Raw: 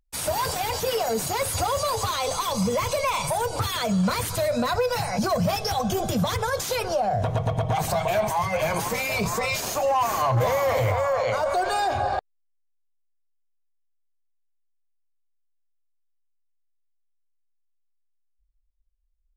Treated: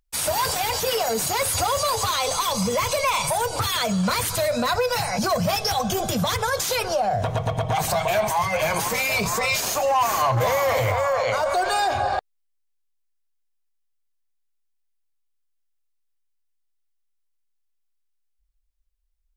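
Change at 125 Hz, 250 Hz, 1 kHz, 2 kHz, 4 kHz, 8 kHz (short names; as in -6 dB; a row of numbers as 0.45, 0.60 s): -1.0, -0.5, +2.0, +4.0, +5.0, +5.0 dB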